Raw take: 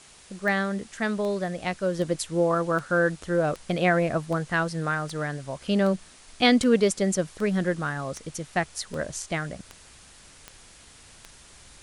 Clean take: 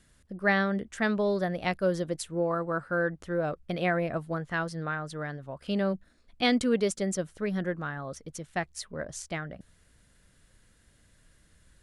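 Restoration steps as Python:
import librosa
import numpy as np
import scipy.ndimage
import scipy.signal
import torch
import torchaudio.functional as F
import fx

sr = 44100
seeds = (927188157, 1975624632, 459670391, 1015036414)

y = fx.fix_declick_ar(x, sr, threshold=10.0)
y = fx.noise_reduce(y, sr, print_start_s=10.61, print_end_s=11.11, reduce_db=12.0)
y = fx.gain(y, sr, db=fx.steps((0.0, 0.0), (1.99, -5.5)))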